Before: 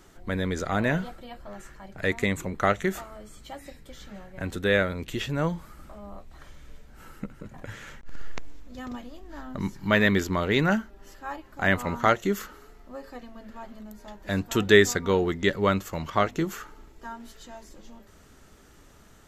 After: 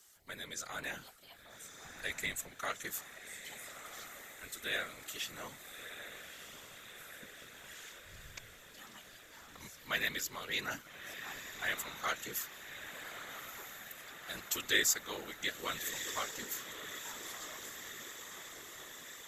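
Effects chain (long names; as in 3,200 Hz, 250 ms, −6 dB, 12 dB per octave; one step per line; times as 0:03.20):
first-order pre-emphasis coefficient 0.97
feedback delay with all-pass diffusion 1,263 ms, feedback 68%, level −9 dB
random phases in short frames
0:01.85–0:02.49: low-shelf EQ 130 Hz +10.5 dB
level +1 dB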